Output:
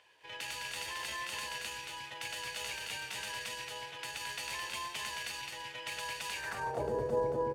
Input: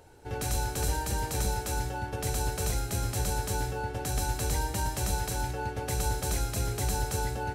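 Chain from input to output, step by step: echo 0.218 s -3.5 dB; band-pass sweep 2400 Hz -> 400 Hz, 6.37–6.9; pitch shift +2 st; gain +6 dB

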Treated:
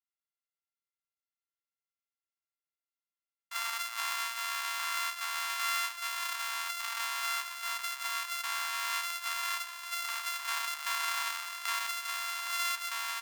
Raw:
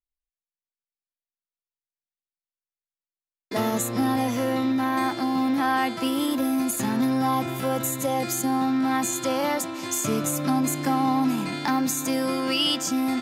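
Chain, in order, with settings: sample sorter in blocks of 64 samples; elliptic high-pass 1000 Hz, stop band 60 dB; gain -5.5 dB

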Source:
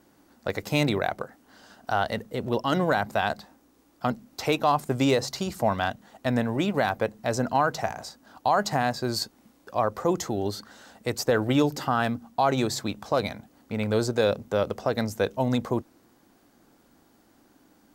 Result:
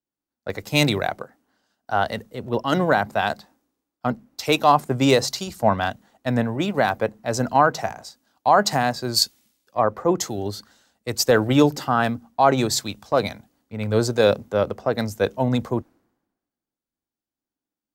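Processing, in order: three-band expander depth 100%; gain +3.5 dB

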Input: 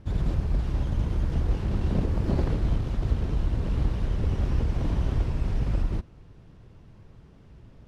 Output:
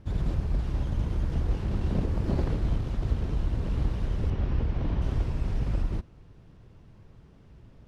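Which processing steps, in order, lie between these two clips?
4.3–5.02 LPF 4000 Hz 12 dB/oct; gain -2 dB

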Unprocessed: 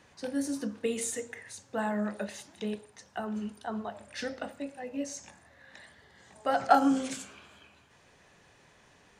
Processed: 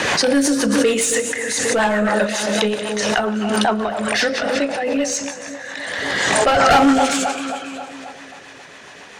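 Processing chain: 4.4–4.82 high shelf 9200 Hz -9 dB; split-band echo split 1200 Hz, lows 0.268 s, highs 0.182 s, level -12.5 dB; overdrive pedal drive 27 dB, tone 5100 Hz, clips at -7 dBFS; rotary speaker horn 7.5 Hz; backwards sustainer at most 23 dB/s; gain +3.5 dB

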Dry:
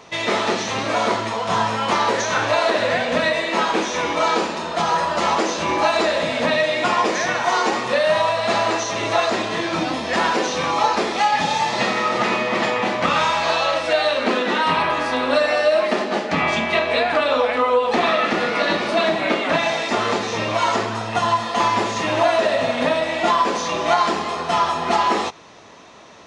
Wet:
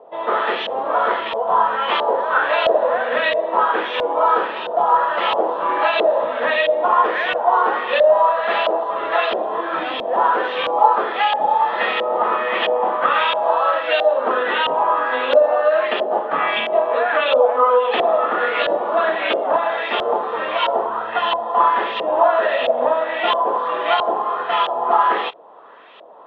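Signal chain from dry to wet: speaker cabinet 450–3900 Hz, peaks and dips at 480 Hz +5 dB, 2200 Hz -8 dB, 3300 Hz +9 dB; LFO low-pass saw up 1.5 Hz 590–2900 Hz; gain -1 dB

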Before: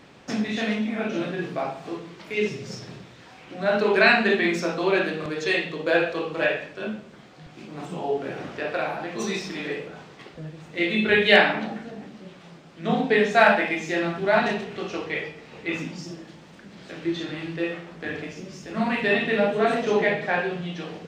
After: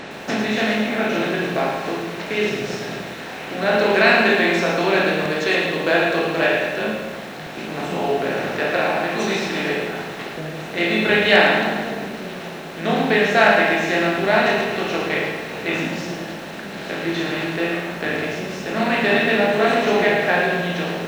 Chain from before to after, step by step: per-bin compression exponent 0.6; resonator 270 Hz, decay 0.85 s, mix 60%; lo-fi delay 0.109 s, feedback 55%, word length 8-bit, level -7 dB; gain +7 dB

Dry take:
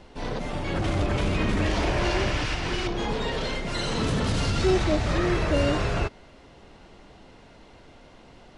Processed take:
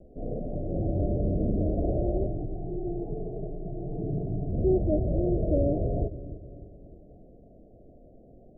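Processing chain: 2.26–4.53 fixed phaser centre 350 Hz, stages 8; steep low-pass 700 Hz 96 dB/oct; dark delay 0.3 s, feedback 48%, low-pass 430 Hz, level -12 dB; gain -1.5 dB

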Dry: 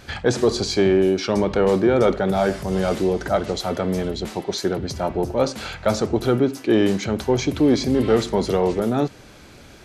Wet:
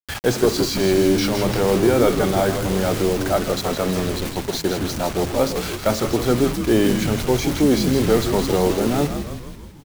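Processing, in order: 0.66–1.72 transient shaper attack -10 dB, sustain +4 dB; bit-crush 5-bit; frequency-shifting echo 0.162 s, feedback 60%, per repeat -86 Hz, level -7 dB

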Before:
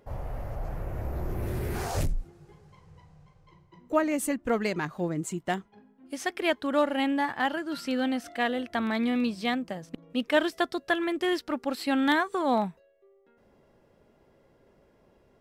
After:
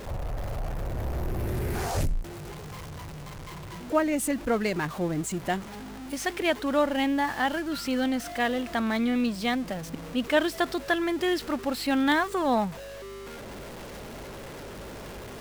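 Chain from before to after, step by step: zero-crossing step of -35.5 dBFS; hum 50 Hz, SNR 22 dB

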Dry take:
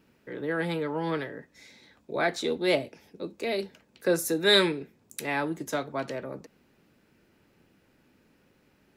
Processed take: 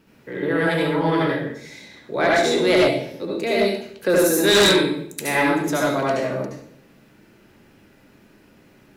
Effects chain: reverb RT60 0.65 s, pre-delay 66 ms, DRR -4.5 dB; in parallel at -10 dB: sine folder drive 13 dB, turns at -1.5 dBFS; on the sum: gain -4.5 dB

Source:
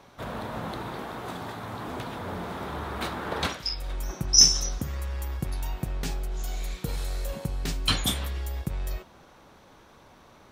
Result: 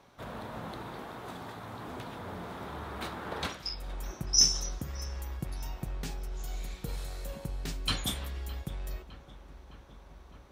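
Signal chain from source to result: darkening echo 0.611 s, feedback 80%, low-pass 2600 Hz, level -16.5 dB; gain -6.5 dB

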